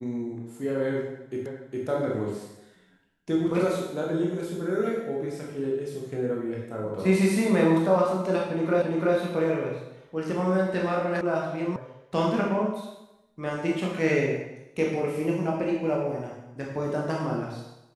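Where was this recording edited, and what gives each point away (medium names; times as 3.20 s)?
1.46 s: repeat of the last 0.41 s
8.82 s: repeat of the last 0.34 s
11.21 s: sound stops dead
11.76 s: sound stops dead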